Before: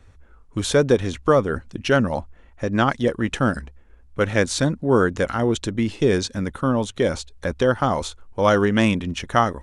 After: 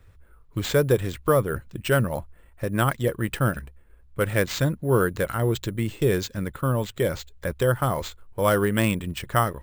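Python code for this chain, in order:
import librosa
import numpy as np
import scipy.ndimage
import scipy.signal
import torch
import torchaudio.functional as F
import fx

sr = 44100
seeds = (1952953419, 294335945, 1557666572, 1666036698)

y = fx.graphic_eq_31(x, sr, hz=(125, 250, 800, 5000), db=(7, -8, -5, -7))
y = np.repeat(y[::4], 4)[:len(y)]
y = fx.quant_float(y, sr, bits=8)
y = y * 10.0 ** (-3.0 / 20.0)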